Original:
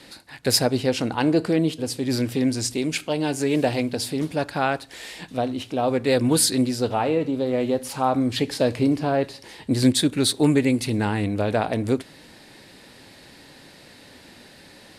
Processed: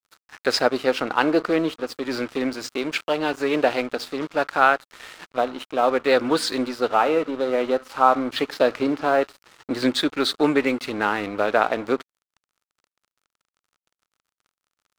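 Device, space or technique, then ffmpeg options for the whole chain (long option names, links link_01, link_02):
pocket radio on a weak battery: -af "highpass=370,lowpass=3800,aeval=exprs='sgn(val(0))*max(abs(val(0))-0.00841,0)':channel_layout=same,equalizer=frequency=1300:width_type=o:width=0.45:gain=9.5,volume=4dB"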